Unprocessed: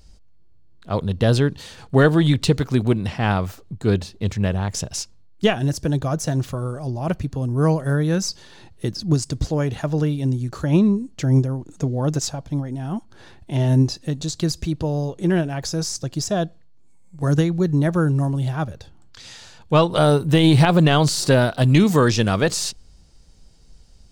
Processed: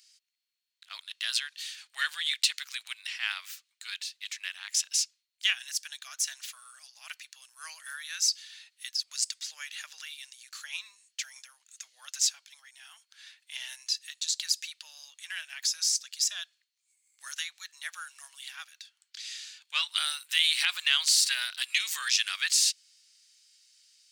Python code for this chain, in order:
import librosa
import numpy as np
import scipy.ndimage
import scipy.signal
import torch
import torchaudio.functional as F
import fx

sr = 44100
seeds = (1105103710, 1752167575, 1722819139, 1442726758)

y = scipy.signal.sosfilt(scipy.signal.cheby2(4, 80, 340.0, 'highpass', fs=sr, output='sos'), x)
y = y * librosa.db_to_amplitude(1.5)